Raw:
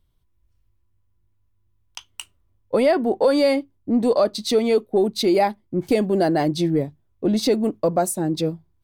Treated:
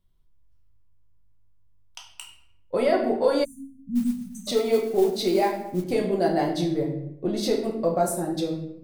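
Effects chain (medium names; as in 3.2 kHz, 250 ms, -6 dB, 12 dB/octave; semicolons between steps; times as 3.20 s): simulated room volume 190 m³, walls mixed, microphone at 1 m; dynamic bell 220 Hz, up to -5 dB, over -28 dBFS, Q 2; 3.44–4.47 s: spectral selection erased 260–5900 Hz; 3.95–5.84 s: modulation noise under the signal 25 dB; trim -6.5 dB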